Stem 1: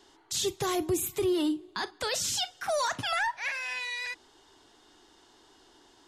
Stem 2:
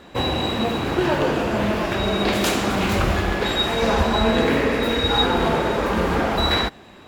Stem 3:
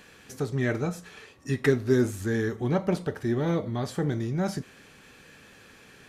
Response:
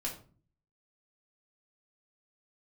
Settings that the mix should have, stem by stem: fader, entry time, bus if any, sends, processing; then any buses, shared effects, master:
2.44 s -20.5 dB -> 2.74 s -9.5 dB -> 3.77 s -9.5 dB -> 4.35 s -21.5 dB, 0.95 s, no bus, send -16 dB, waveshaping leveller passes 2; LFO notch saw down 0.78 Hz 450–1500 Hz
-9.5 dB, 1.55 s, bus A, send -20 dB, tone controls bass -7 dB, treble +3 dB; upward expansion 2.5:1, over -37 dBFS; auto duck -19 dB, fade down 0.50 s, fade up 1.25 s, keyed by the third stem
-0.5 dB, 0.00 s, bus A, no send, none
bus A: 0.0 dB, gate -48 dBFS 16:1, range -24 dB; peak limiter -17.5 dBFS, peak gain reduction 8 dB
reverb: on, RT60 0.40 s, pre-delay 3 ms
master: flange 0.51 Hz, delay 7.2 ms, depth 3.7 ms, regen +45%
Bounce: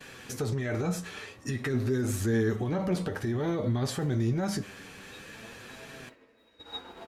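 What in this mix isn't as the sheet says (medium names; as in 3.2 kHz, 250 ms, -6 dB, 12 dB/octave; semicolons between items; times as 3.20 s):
stem 1: muted; stem 3 -0.5 dB -> +9.5 dB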